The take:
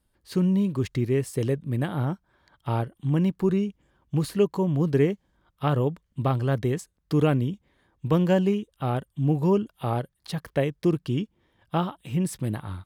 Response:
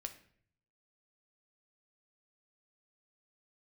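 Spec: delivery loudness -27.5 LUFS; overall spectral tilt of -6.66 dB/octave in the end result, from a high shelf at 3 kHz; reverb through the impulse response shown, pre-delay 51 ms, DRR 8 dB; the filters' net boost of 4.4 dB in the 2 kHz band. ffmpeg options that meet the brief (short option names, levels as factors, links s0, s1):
-filter_complex "[0:a]equalizer=f=2000:t=o:g=4.5,highshelf=f=3000:g=3.5,asplit=2[s0][s1];[1:a]atrim=start_sample=2205,adelay=51[s2];[s1][s2]afir=irnorm=-1:irlink=0,volume=0.562[s3];[s0][s3]amix=inputs=2:normalize=0,volume=0.794"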